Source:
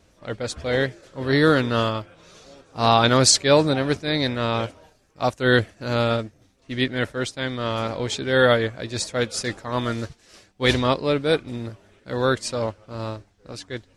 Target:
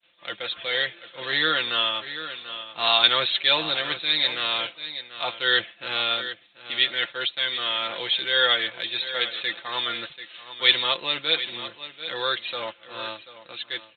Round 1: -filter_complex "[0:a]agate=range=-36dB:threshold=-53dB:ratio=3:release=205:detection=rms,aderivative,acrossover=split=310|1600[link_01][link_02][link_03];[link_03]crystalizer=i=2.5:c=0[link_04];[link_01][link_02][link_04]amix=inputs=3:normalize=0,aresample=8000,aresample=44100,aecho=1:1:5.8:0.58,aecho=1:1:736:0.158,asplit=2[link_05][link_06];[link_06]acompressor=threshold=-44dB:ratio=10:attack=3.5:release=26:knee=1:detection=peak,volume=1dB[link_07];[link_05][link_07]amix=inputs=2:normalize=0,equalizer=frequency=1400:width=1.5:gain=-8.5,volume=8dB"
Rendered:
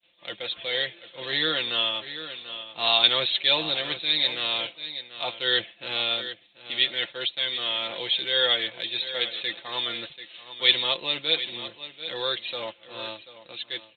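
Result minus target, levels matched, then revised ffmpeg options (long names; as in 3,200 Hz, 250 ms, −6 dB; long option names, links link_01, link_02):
1,000 Hz band −4.0 dB
-filter_complex "[0:a]agate=range=-36dB:threshold=-53dB:ratio=3:release=205:detection=rms,aderivative,acrossover=split=310|1600[link_01][link_02][link_03];[link_03]crystalizer=i=2.5:c=0[link_04];[link_01][link_02][link_04]amix=inputs=3:normalize=0,aresample=8000,aresample=44100,aecho=1:1:5.8:0.58,aecho=1:1:736:0.158,asplit=2[link_05][link_06];[link_06]acompressor=threshold=-44dB:ratio=10:attack=3.5:release=26:knee=1:detection=peak,volume=1dB[link_07];[link_05][link_07]amix=inputs=2:normalize=0,volume=8dB"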